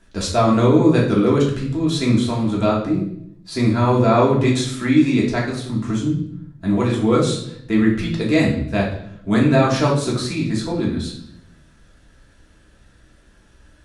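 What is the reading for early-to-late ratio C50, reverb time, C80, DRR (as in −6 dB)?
5.0 dB, 0.70 s, 9.5 dB, −4.5 dB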